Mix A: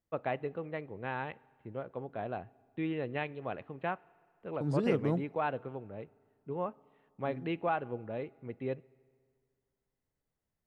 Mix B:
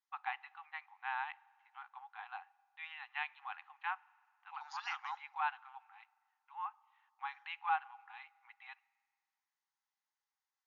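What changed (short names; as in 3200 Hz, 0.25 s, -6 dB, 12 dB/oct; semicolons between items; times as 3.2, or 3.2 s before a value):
second voice +4.0 dB; master: add brick-wall FIR band-pass 750–7000 Hz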